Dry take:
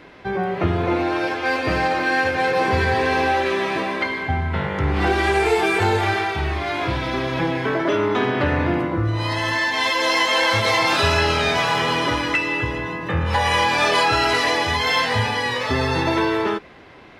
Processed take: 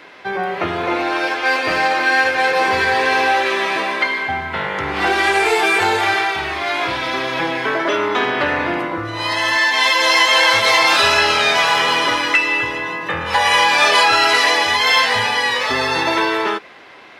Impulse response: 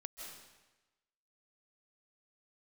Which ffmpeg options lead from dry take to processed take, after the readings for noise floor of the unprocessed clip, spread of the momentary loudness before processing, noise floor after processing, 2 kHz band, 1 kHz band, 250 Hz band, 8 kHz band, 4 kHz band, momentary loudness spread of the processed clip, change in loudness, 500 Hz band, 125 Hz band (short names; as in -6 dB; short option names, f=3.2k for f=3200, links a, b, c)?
-31 dBFS, 6 LU, -29 dBFS, +6.0 dB, +4.5 dB, -2.5 dB, +7.0 dB, +7.0 dB, 10 LU, +4.5 dB, +1.0 dB, -11.0 dB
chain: -af "highpass=f=840:p=1,volume=7dB"